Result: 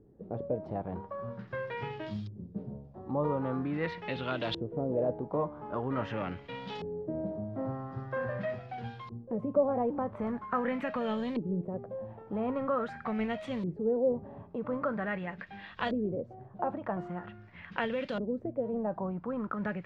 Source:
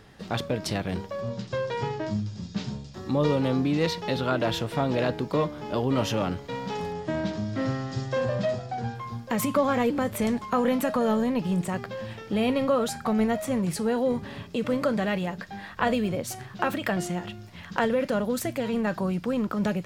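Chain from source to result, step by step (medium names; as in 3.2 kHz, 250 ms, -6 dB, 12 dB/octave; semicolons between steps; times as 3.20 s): short-mantissa float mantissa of 4-bit; LFO low-pass saw up 0.44 Hz 350–3900 Hz; trim -9 dB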